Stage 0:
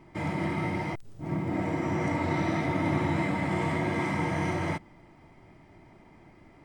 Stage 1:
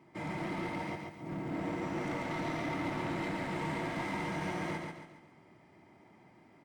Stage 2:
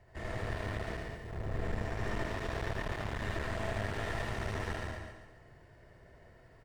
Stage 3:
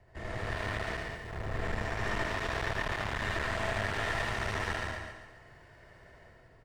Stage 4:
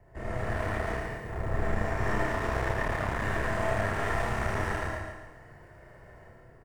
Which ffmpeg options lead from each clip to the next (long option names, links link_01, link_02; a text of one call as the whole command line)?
ffmpeg -i in.wav -filter_complex "[0:a]highpass=140,asoftclip=type=hard:threshold=-28dB,asplit=2[link_01][link_02];[link_02]aecho=0:1:139|278|417|556|695:0.631|0.265|0.111|0.0467|0.0196[link_03];[link_01][link_03]amix=inputs=2:normalize=0,volume=-6dB" out.wav
ffmpeg -i in.wav -af "afreqshift=-260,aecho=1:1:78.72|192.4:0.891|0.447,aeval=exprs='clip(val(0),-1,0.00891)':channel_layout=same" out.wav
ffmpeg -i in.wav -filter_complex "[0:a]highshelf=frequency=9500:gain=-6.5,acrossover=split=790[link_01][link_02];[link_02]dynaudnorm=framelen=100:gausssize=9:maxgain=7.5dB[link_03];[link_01][link_03]amix=inputs=2:normalize=0" out.wav
ffmpeg -i in.wav -filter_complex "[0:a]equalizer=frequency=3800:width_type=o:width=1.6:gain=-12.5,asplit=2[link_01][link_02];[link_02]adelay=32,volume=-2.5dB[link_03];[link_01][link_03]amix=inputs=2:normalize=0,volume=3.5dB" out.wav